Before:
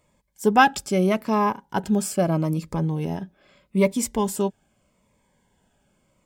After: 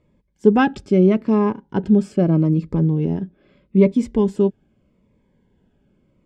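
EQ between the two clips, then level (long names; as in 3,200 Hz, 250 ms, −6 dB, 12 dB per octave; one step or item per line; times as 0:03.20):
low-pass filter 3,500 Hz 12 dB per octave
low shelf with overshoot 530 Hz +9 dB, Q 1.5
−3.0 dB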